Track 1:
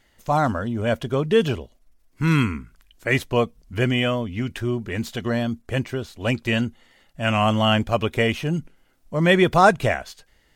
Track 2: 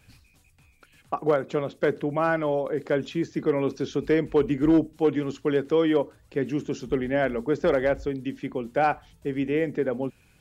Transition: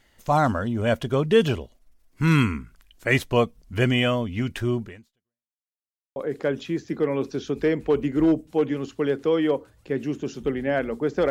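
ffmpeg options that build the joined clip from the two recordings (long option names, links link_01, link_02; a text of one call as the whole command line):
ffmpeg -i cue0.wav -i cue1.wav -filter_complex "[0:a]apad=whole_dur=11.3,atrim=end=11.3,asplit=2[link_01][link_02];[link_01]atrim=end=5.54,asetpts=PTS-STARTPTS,afade=type=out:start_time=4.83:duration=0.71:curve=exp[link_03];[link_02]atrim=start=5.54:end=6.16,asetpts=PTS-STARTPTS,volume=0[link_04];[1:a]atrim=start=2.62:end=7.76,asetpts=PTS-STARTPTS,afade=type=in:duration=0.004:curve=hsin[link_05];[link_03][link_04][link_05]concat=n=3:v=0:a=1" out.wav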